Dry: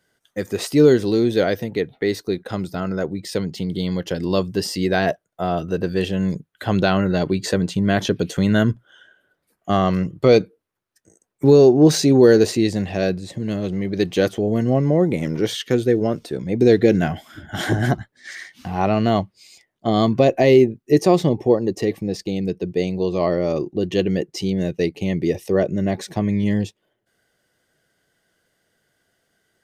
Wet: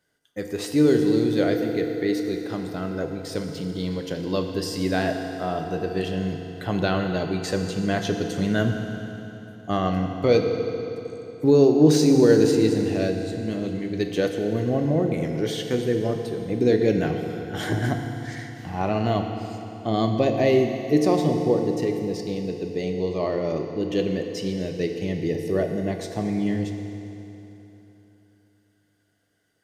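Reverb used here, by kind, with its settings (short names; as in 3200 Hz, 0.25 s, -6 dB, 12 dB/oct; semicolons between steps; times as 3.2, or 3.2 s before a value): FDN reverb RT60 3.4 s, high-frequency decay 0.85×, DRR 3.5 dB; gain -6 dB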